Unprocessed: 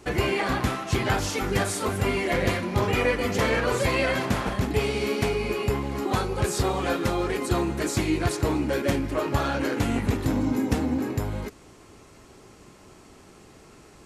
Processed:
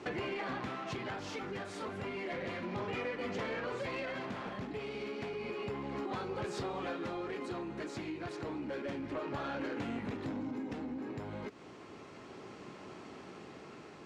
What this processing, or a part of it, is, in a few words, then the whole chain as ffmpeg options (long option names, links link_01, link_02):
AM radio: -af "highpass=150,lowpass=3800,acompressor=threshold=-37dB:ratio=6,asoftclip=type=tanh:threshold=-32dB,tremolo=f=0.31:d=0.29,volume=2.5dB"